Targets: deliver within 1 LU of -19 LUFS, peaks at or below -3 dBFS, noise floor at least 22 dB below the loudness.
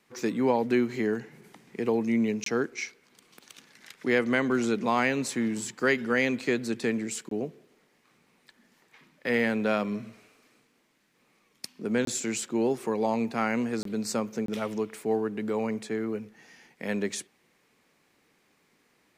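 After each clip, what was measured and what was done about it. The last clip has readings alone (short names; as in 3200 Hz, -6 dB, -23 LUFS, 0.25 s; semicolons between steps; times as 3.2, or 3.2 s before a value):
dropouts 5; longest dropout 23 ms; loudness -28.5 LUFS; peak -11.0 dBFS; loudness target -19.0 LUFS
-> interpolate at 2.44/7.29/12.05/13.83/14.46, 23 ms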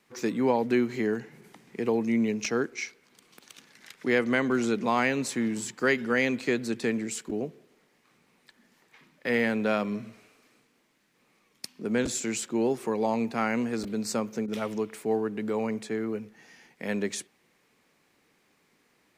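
dropouts 0; loudness -28.5 LUFS; peak -11.0 dBFS; loudness target -19.0 LUFS
-> gain +9.5 dB; limiter -3 dBFS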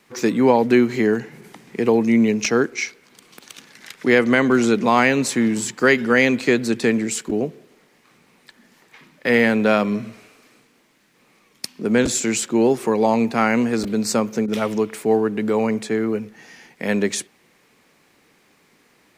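loudness -19.5 LUFS; peak -3.0 dBFS; noise floor -59 dBFS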